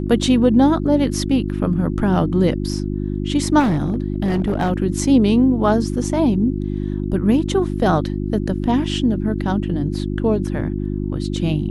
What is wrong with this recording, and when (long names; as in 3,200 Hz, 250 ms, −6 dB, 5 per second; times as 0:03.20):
mains hum 50 Hz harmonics 7 −23 dBFS
0:03.59–0:04.71: clipping −14 dBFS